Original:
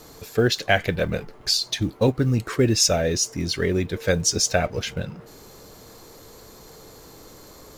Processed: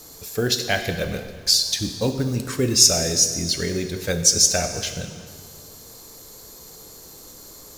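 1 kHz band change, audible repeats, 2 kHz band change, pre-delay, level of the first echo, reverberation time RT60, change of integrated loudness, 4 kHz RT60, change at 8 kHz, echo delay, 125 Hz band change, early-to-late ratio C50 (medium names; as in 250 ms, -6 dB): -3.0 dB, no echo, -2.0 dB, 6 ms, no echo, 1.8 s, +2.5 dB, 1.6 s, +7.0 dB, no echo, -2.5 dB, 8.5 dB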